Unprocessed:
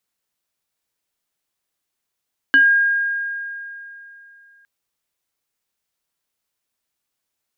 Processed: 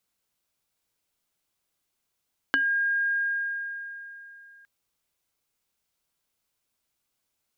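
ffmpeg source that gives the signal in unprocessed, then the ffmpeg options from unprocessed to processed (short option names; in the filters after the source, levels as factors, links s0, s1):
-f lavfi -i "aevalsrc='0.398*pow(10,-3*t/2.98)*sin(2*PI*1620*t+0.51*pow(10,-3*t/0.21)*sin(2*PI*0.83*1620*t))':d=2.11:s=44100"
-af "acompressor=threshold=0.0708:ratio=10,lowshelf=f=190:g=4.5,bandreject=f=1800:w=14"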